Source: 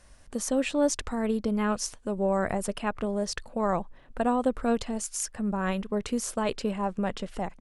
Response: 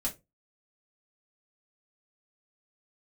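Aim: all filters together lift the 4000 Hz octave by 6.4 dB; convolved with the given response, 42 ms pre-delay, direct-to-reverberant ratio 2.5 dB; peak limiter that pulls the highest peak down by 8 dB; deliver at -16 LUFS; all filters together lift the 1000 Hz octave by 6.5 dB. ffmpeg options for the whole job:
-filter_complex "[0:a]equalizer=f=1k:t=o:g=8,equalizer=f=4k:t=o:g=8.5,alimiter=limit=-18dB:level=0:latency=1,asplit=2[a][b];[1:a]atrim=start_sample=2205,adelay=42[c];[b][c]afir=irnorm=-1:irlink=0,volume=-5.5dB[d];[a][d]amix=inputs=2:normalize=0,volume=10dB"

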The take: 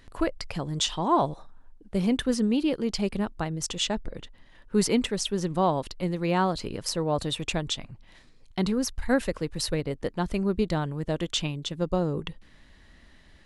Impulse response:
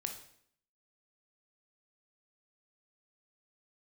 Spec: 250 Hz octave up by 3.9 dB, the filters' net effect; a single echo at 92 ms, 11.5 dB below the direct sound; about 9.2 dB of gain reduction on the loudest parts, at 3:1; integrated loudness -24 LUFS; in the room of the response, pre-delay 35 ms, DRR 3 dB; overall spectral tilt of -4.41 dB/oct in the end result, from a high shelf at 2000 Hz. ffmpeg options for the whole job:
-filter_complex "[0:a]equalizer=f=250:t=o:g=5,highshelf=f=2k:g=5,acompressor=threshold=-28dB:ratio=3,aecho=1:1:92:0.266,asplit=2[a][b];[1:a]atrim=start_sample=2205,adelay=35[c];[b][c]afir=irnorm=-1:irlink=0,volume=-2.5dB[d];[a][d]amix=inputs=2:normalize=0,volume=5.5dB"

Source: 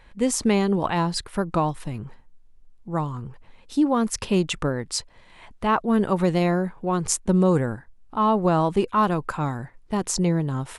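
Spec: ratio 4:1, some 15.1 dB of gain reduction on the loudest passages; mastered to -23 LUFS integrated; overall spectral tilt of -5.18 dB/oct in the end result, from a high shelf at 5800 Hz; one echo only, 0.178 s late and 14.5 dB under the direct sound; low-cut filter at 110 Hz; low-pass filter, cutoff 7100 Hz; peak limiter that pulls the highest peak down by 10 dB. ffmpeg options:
-af "highpass=110,lowpass=7.1k,highshelf=f=5.8k:g=5.5,acompressor=threshold=-35dB:ratio=4,alimiter=level_in=4dB:limit=-24dB:level=0:latency=1,volume=-4dB,aecho=1:1:178:0.188,volume=15dB"

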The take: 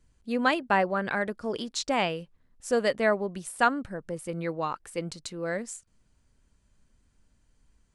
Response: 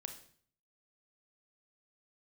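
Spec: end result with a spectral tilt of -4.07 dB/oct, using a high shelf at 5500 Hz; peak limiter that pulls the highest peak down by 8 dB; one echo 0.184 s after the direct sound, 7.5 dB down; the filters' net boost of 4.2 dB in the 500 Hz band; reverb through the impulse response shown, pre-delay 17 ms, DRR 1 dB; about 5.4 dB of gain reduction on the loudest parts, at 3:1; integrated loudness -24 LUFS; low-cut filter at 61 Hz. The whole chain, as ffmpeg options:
-filter_complex "[0:a]highpass=61,equalizer=f=500:t=o:g=5,highshelf=f=5.5k:g=6,acompressor=threshold=-23dB:ratio=3,alimiter=limit=-21dB:level=0:latency=1,aecho=1:1:184:0.422,asplit=2[a][b];[1:a]atrim=start_sample=2205,adelay=17[c];[b][c]afir=irnorm=-1:irlink=0,volume=2.5dB[d];[a][d]amix=inputs=2:normalize=0,volume=5dB"

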